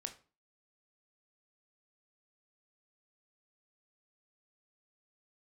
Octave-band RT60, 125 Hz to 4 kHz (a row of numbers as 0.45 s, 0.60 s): 0.40 s, 0.45 s, 0.35 s, 0.35 s, 0.30 s, 0.30 s